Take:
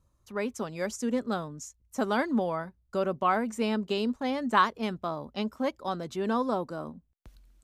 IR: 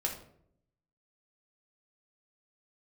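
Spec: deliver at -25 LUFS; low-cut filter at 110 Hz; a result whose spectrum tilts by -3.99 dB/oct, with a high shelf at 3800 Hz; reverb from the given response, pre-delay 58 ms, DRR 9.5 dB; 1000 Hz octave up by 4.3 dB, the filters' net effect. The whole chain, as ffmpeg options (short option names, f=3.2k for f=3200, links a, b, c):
-filter_complex "[0:a]highpass=110,equalizer=f=1k:t=o:g=5.5,highshelf=f=3.8k:g=-5,asplit=2[a][b];[1:a]atrim=start_sample=2205,adelay=58[c];[b][c]afir=irnorm=-1:irlink=0,volume=-13dB[d];[a][d]amix=inputs=2:normalize=0,volume=3dB"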